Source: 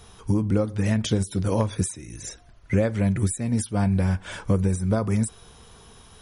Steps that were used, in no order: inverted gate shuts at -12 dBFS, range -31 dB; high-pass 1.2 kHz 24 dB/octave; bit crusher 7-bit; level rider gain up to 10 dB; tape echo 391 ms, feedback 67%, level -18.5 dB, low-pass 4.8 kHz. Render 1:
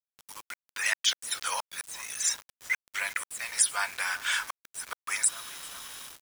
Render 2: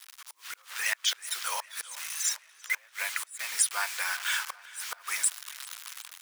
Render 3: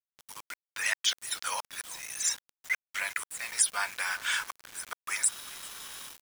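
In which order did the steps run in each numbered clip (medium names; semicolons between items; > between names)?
tape echo > inverted gate > high-pass > level rider > bit crusher; bit crusher > inverted gate > tape echo > level rider > high-pass; inverted gate > tape echo > level rider > high-pass > bit crusher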